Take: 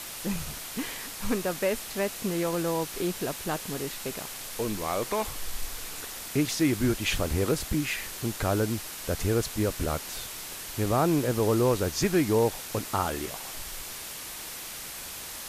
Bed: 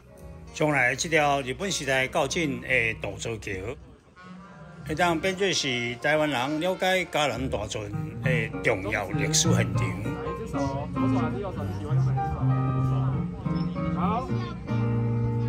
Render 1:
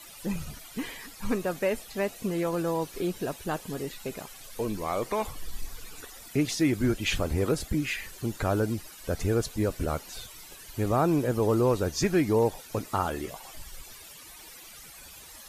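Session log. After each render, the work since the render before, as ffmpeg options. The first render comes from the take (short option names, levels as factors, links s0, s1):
-af "afftdn=nr=14:nf=-40"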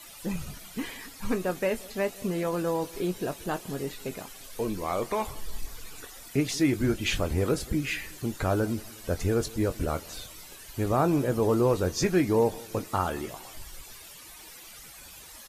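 -filter_complex "[0:a]asplit=2[s0][s1];[s1]adelay=22,volume=0.266[s2];[s0][s2]amix=inputs=2:normalize=0,asplit=2[s3][s4];[s4]adelay=180,lowpass=f=2000:p=1,volume=0.0794,asplit=2[s5][s6];[s6]adelay=180,lowpass=f=2000:p=1,volume=0.52,asplit=2[s7][s8];[s8]adelay=180,lowpass=f=2000:p=1,volume=0.52,asplit=2[s9][s10];[s10]adelay=180,lowpass=f=2000:p=1,volume=0.52[s11];[s3][s5][s7][s9][s11]amix=inputs=5:normalize=0"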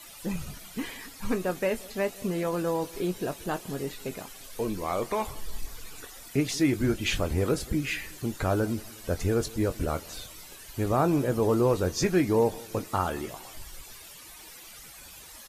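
-af anull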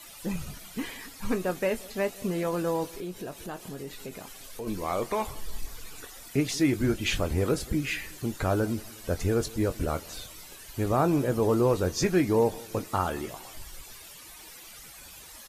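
-filter_complex "[0:a]asplit=3[s0][s1][s2];[s0]afade=t=out:st=2.91:d=0.02[s3];[s1]acompressor=threshold=0.0126:ratio=2:attack=3.2:release=140:knee=1:detection=peak,afade=t=in:st=2.91:d=0.02,afade=t=out:st=4.66:d=0.02[s4];[s2]afade=t=in:st=4.66:d=0.02[s5];[s3][s4][s5]amix=inputs=3:normalize=0"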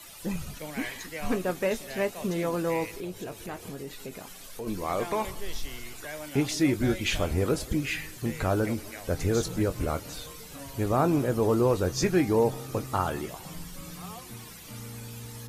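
-filter_complex "[1:a]volume=0.15[s0];[0:a][s0]amix=inputs=2:normalize=0"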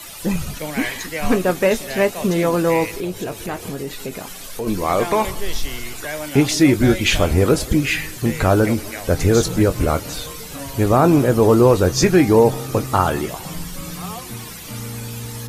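-af "volume=3.55,alimiter=limit=0.708:level=0:latency=1"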